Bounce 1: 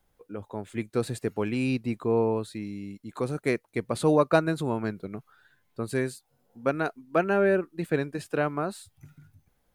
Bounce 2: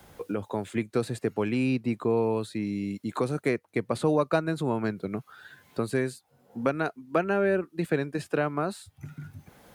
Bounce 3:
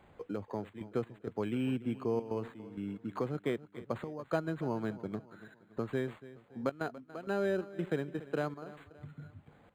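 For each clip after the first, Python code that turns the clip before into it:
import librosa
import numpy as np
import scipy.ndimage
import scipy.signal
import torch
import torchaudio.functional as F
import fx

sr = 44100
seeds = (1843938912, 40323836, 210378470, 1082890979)

y1 = scipy.signal.sosfilt(scipy.signal.butter(2, 68.0, 'highpass', fs=sr, output='sos'), x)
y1 = fx.high_shelf(y1, sr, hz=10000.0, db=-4.0)
y1 = fx.band_squash(y1, sr, depth_pct=70)
y2 = fx.step_gate(y1, sr, bpm=130, pattern='xxxxxx.xx..xx', floor_db=-12.0, edge_ms=4.5)
y2 = fx.echo_feedback(y2, sr, ms=286, feedback_pct=43, wet_db=-17.0)
y2 = np.interp(np.arange(len(y2)), np.arange(len(y2))[::8], y2[::8])
y2 = y2 * librosa.db_to_amplitude(-7.0)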